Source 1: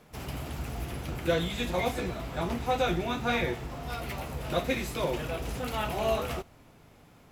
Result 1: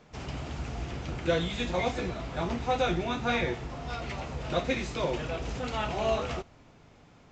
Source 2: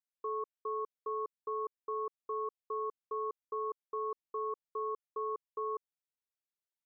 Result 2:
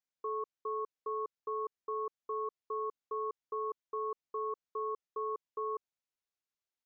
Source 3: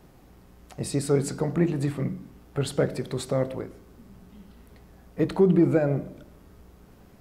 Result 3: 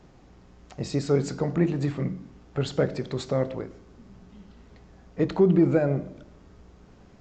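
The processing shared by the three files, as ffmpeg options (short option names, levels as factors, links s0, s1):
-af "aresample=16000,aresample=44100"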